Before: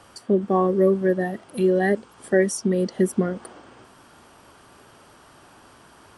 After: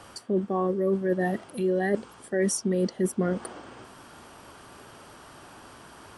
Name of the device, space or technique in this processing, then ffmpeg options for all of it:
compression on the reversed sound: -af "areverse,acompressor=threshold=-24dB:ratio=12,areverse,volume=2.5dB"

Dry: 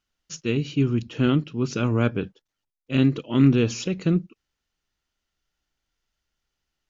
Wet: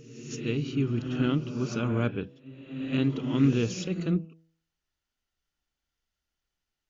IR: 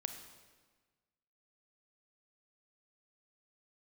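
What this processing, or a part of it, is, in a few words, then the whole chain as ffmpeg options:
reverse reverb: -filter_complex "[0:a]bandreject=f=162.9:t=h:w=4,bandreject=f=325.8:t=h:w=4,bandreject=f=488.7:t=h:w=4,bandreject=f=651.6:t=h:w=4,bandreject=f=814.5:t=h:w=4,bandreject=f=977.4:t=h:w=4,areverse[a];[1:a]atrim=start_sample=2205[b];[a][b]afir=irnorm=-1:irlink=0,areverse,volume=-4dB"

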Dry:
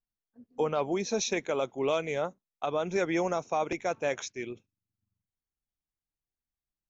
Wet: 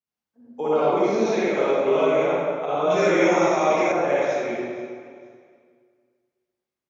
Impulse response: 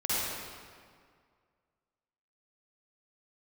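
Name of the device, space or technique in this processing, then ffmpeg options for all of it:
swimming-pool hall: -filter_complex "[0:a]acrossover=split=2800[a][b];[b]acompressor=threshold=-44dB:ratio=4:attack=1:release=60[c];[a][c]amix=inputs=2:normalize=0[d];[1:a]atrim=start_sample=2205[e];[d][e]afir=irnorm=-1:irlink=0,highpass=160,highshelf=f=4.6k:g=-8,asettb=1/sr,asplit=3[f][g][h];[f]atrim=end=2.904[i];[g]atrim=start=2.9:end=3.92,asetpts=PTS-STARTPTS,afade=t=in:d=0.004:c=qsin,afade=t=out:st=1.016:d=0.004:c=qsin,highshelf=f=2.4k:g=11[j];[h]atrim=start=3.916[k];[i][j]acrossfade=d=0.004:c1=hsin:c2=qsin[l];[l][k]acrossfade=d=0.004:c1=qsin:c2=hsin,aecho=1:1:469|938:0.1|0.027"

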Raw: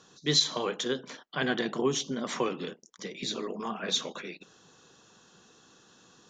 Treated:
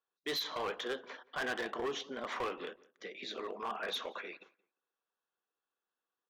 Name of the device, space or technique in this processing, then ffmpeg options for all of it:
walkie-talkie: -filter_complex "[0:a]highpass=530,lowpass=2.4k,asoftclip=type=hard:threshold=-32dB,agate=range=-30dB:threshold=-58dB:ratio=16:detection=peak,asettb=1/sr,asplit=3[a][b][c];[a]atrim=end=2.714[d];[b]atrim=start=2.71:end=3.39,asetpts=PTS-STARTPTS,afade=t=in:d=0.004:c=qsin,afade=t=out:st=0.676:d=0.004:c=qsin,equalizer=f=980:w=3.2:g=-13.5[e];[c]atrim=start=3.386[f];[d][e]acrossfade=d=0.004:c1=hsin:c2=qsin[g];[g][f]acrossfade=d=0.004:c1=qsin:c2=hsin,asplit=2[h][i];[i]adelay=175,lowpass=f=2.1k:p=1,volume=-21.5dB,asplit=2[j][k];[k]adelay=175,lowpass=f=2.1k:p=1,volume=0.2[l];[h][j][l]amix=inputs=3:normalize=0"

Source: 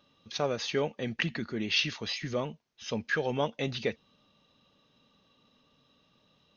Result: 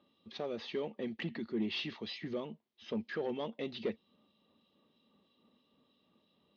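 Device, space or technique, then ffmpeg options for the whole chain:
guitar amplifier with harmonic tremolo: -filter_complex "[0:a]acrossover=split=2400[a][b];[a]aeval=exprs='val(0)*(1-0.5/2+0.5/2*cos(2*PI*3.1*n/s))':c=same[c];[b]aeval=exprs='val(0)*(1-0.5/2-0.5/2*cos(2*PI*3.1*n/s))':c=same[d];[c][d]amix=inputs=2:normalize=0,asoftclip=type=tanh:threshold=-27.5dB,highpass=85,equalizer=f=130:t=q:w=4:g=-10,equalizer=f=220:t=q:w=4:g=6,equalizer=f=360:t=q:w=4:g=7,equalizer=f=1.5k:t=q:w=4:g=-8,equalizer=f=2.5k:t=q:w=4:g=-4,lowpass=f=4.1k:w=0.5412,lowpass=f=4.1k:w=1.3066,volume=-3dB"

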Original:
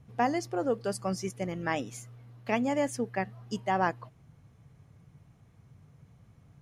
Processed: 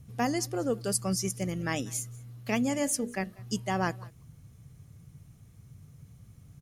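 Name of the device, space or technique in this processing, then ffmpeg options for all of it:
smiley-face EQ: -filter_complex "[0:a]aemphasis=mode=production:type=cd,asettb=1/sr,asplit=3[a][b][c];[a]atrim=end=2.734[d];[b]atrim=start=2.73:end=3.39,asetpts=PTS-STARTPTS,afade=t=in:d=0.004:c=qsin,afade=t=out:st=0.656:d=0.004:c=qsin,bandreject=f=60:t=h:w=6,bandreject=f=120:t=h:w=6,bandreject=f=180:t=h:w=6,bandreject=f=240:t=h:w=6,bandreject=f=300:t=h:w=6,bandreject=f=360:t=h:w=6,bandreject=f=420:t=h:w=6,bandreject=f=480:t=h:w=6,bandreject=f=540:t=h:w=6,bandreject=f=600:t=h:w=6[e];[c]atrim=start=3.386[f];[d][e]acrossfade=d=0.004:c1=hsin:c2=qsin[g];[g][f]acrossfade=d=0.004:c1=qsin:c2=hsin,lowshelf=f=180:g=8,equalizer=f=1k:t=o:w=1.5:g=-7,equalizer=f=1.2k:t=o:w=0.47:g=4.5,highshelf=f=5.6k:g=7,aecho=1:1:192:0.0631"

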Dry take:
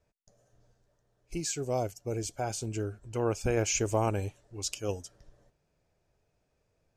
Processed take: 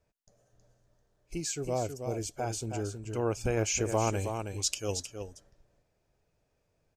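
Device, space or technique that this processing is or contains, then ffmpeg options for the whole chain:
ducked delay: -filter_complex "[0:a]asplit=3[a][b][c];[b]adelay=319,volume=-6.5dB[d];[c]apad=whole_len=321160[e];[d][e]sidechaincompress=threshold=-31dB:ratio=8:attack=16:release=137[f];[a][f]amix=inputs=2:normalize=0,asettb=1/sr,asplit=3[g][h][i];[g]atrim=end=3.924[j];[h]atrim=start=3.92:end=5.05,asetpts=PTS-STARTPTS,afade=t=in:d=0.004:c=qsin,afade=t=out:st=1.126:d=0.004:c=qsin,equalizer=f=6.3k:w=0.31:g=5.5[k];[i]atrim=start=5.046[l];[j][k]acrossfade=d=0.004:c1=hsin:c2=qsin[m];[m][l]acrossfade=d=0.004:c1=qsin:c2=hsin,volume=-1dB"

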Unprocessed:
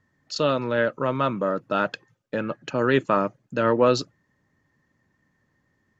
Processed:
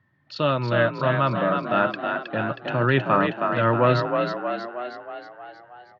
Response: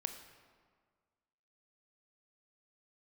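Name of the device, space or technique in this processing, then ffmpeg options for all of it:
frequency-shifting delay pedal into a guitar cabinet: -filter_complex "[0:a]asplit=9[a][b][c][d][e][f][g][h][i];[b]adelay=317,afreqshift=39,volume=-5dB[j];[c]adelay=634,afreqshift=78,volume=-9.7dB[k];[d]adelay=951,afreqshift=117,volume=-14.5dB[l];[e]adelay=1268,afreqshift=156,volume=-19.2dB[m];[f]adelay=1585,afreqshift=195,volume=-23.9dB[n];[g]adelay=1902,afreqshift=234,volume=-28.7dB[o];[h]adelay=2219,afreqshift=273,volume=-33.4dB[p];[i]adelay=2536,afreqshift=312,volume=-38.1dB[q];[a][j][k][l][m][n][o][p][q]amix=inputs=9:normalize=0,highpass=95,equalizer=f=120:t=q:w=4:g=9,equalizer=f=250:t=q:w=4:g=-5,equalizer=f=460:t=q:w=4:g=-9,lowpass=f=3.7k:w=0.5412,lowpass=f=3.7k:w=1.3066,volume=2dB"

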